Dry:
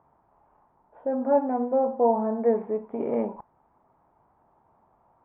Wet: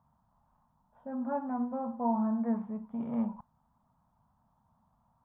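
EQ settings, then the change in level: FFT filter 230 Hz 0 dB, 360 Hz -26 dB, 890 Hz -5 dB, 2.3 kHz -14 dB, 3.4 kHz 0 dB; dynamic bell 1.3 kHz, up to +7 dB, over -51 dBFS, Q 1.4; peaking EQ 840 Hz -6 dB 0.32 oct; 0.0 dB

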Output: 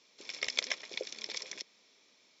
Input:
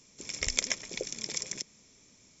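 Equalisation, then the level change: high-pass 480 Hz 12 dB/octave; distance through air 200 m; peaking EQ 4.1 kHz +9 dB 0.84 oct; 0.0 dB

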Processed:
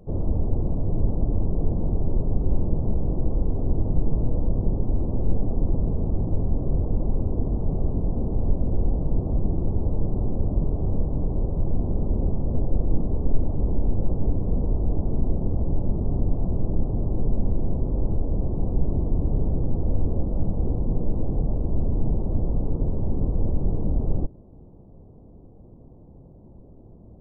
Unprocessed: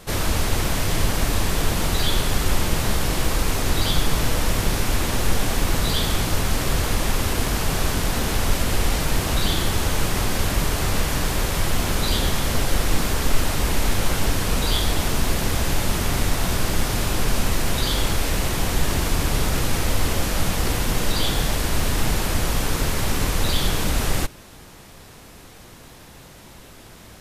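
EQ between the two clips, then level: Gaussian low-pass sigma 15 samples; 0.0 dB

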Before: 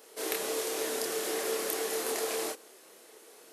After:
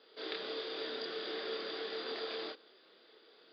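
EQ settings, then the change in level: rippled Chebyshev low-pass 4.9 kHz, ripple 9 dB; bass shelf 89 Hz -12 dB; peaking EQ 1 kHz -11 dB 1.6 oct; +4.5 dB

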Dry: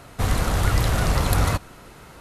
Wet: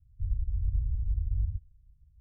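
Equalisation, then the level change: inverse Chebyshev low-pass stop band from 510 Hz, stop band 80 dB; -6.0 dB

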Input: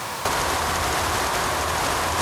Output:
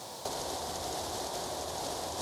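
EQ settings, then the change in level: bass shelf 150 Hz -11 dB; high-order bell 1.7 kHz -14 dB; treble shelf 10 kHz -7 dB; -9.0 dB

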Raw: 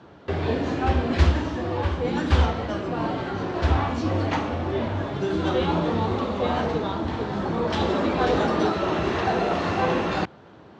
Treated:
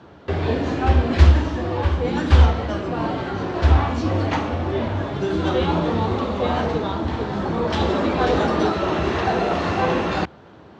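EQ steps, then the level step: peaking EQ 71 Hz +6 dB 0.37 oct; +2.5 dB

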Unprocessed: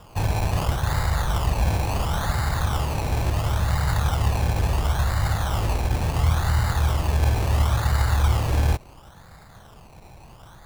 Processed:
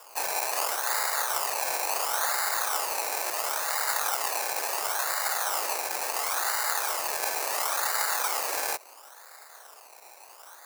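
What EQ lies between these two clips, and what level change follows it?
high-pass 440 Hz 24 dB/octave; tilt EQ +3 dB/octave; peaking EQ 3.3 kHz -11.5 dB 0.45 oct; 0.0 dB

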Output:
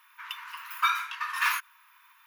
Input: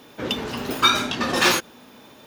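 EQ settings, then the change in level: brick-wall FIR high-pass 910 Hz; high-order bell 5.3 kHz -11.5 dB; -5.0 dB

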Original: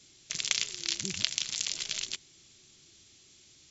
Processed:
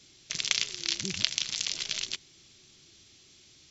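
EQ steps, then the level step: peaking EQ 7.1 kHz -7 dB 0.24 oct; +2.5 dB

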